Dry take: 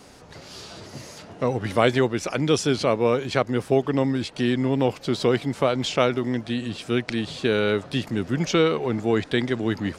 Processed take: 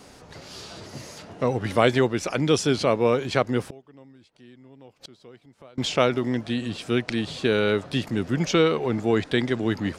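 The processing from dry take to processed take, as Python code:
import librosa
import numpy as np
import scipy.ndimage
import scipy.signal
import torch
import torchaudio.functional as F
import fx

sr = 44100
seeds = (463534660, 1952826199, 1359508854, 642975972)

y = fx.gate_flip(x, sr, shuts_db=-25.0, range_db=-27, at=(3.66, 5.78))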